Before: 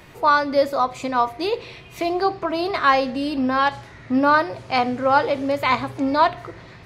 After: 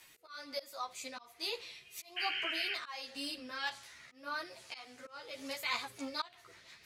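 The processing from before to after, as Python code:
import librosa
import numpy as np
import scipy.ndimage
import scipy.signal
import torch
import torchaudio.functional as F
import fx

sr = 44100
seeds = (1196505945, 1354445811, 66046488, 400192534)

y = fx.auto_swell(x, sr, attack_ms=407.0)
y = fx.rotary_switch(y, sr, hz=1.2, then_hz=6.0, switch_at_s=5.23)
y = fx.spec_paint(y, sr, seeds[0], shape='noise', start_s=2.16, length_s=0.58, low_hz=1400.0, high_hz=3200.0, level_db=-31.0)
y = librosa.effects.preemphasis(y, coef=0.97, zi=[0.0])
y = fx.ensemble(y, sr)
y = y * 10.0 ** (6.0 / 20.0)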